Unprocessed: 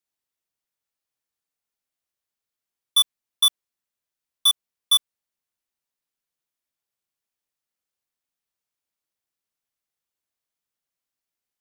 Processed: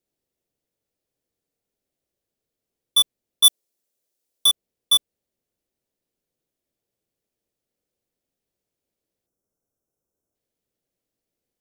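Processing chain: 3.44–4.46 s: tone controls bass -11 dB, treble +8 dB; 9.27–10.35 s: spectral selection erased 1.6–5.2 kHz; resonant low shelf 720 Hz +11.5 dB, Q 1.5; trim +1 dB

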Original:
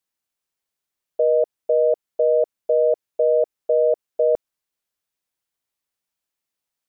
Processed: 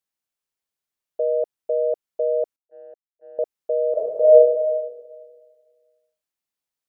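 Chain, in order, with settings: 2.56–3.39 s: gate -13 dBFS, range -46 dB; 3.92–4.33 s: reverb throw, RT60 1.6 s, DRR -8 dB; trim -4 dB

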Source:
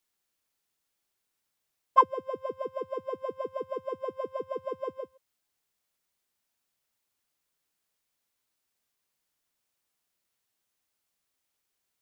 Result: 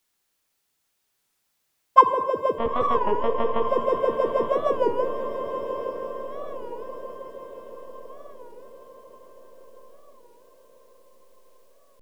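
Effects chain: in parallel at -2.5 dB: gain riding 0.5 s; 2.58–3.66 s: on the sum: monotone LPC vocoder at 8 kHz 230 Hz; echo that smears into a reverb 959 ms, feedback 55%, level -7 dB; Schroeder reverb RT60 1.6 s, DRR 8 dB; warped record 33 1/3 rpm, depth 160 cents; trim +4 dB

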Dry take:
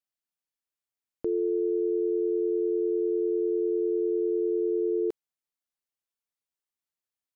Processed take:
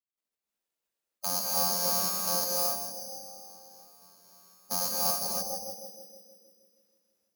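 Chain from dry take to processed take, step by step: one-sided wavefolder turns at -26 dBFS; tilt EQ -3 dB/octave; peak limiter -18.5 dBFS, peak gain reduction 4.5 dB; 2.60–4.71 s: expander -8 dBFS; small resonant body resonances 300/420 Hz, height 13 dB, ringing for 60 ms; trance gate ".x.xx.xx.xxx.x" 86 bpm -12 dB; band-passed feedback delay 158 ms, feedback 74%, band-pass 320 Hz, level -3.5 dB; spectral gate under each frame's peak -25 dB weak; high-pass 74 Hz; careless resampling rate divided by 8×, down none, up zero stuff; ten-band graphic EQ 125 Hz -8 dB, 250 Hz +7 dB, 500 Hz +5 dB; gated-style reverb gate 330 ms rising, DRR -3.5 dB; trim +3.5 dB

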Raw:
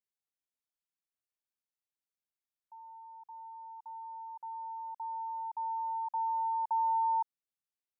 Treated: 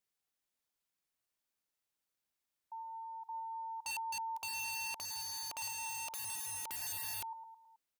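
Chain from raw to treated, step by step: feedback delay 107 ms, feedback 51%, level -16 dB; integer overflow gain 42 dB; trim +5.5 dB

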